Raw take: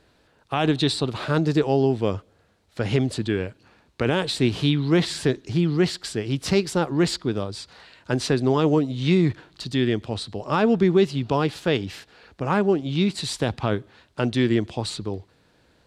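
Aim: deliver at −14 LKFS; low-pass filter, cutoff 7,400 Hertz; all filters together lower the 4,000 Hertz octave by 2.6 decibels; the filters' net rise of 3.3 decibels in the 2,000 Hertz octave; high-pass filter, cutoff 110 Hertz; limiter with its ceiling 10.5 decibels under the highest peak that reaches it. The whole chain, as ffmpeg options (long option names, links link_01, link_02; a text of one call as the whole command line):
ffmpeg -i in.wav -af "highpass=110,lowpass=7400,equalizer=frequency=2000:width_type=o:gain=5.5,equalizer=frequency=4000:width_type=o:gain=-4.5,volume=15dB,alimiter=limit=-2.5dB:level=0:latency=1" out.wav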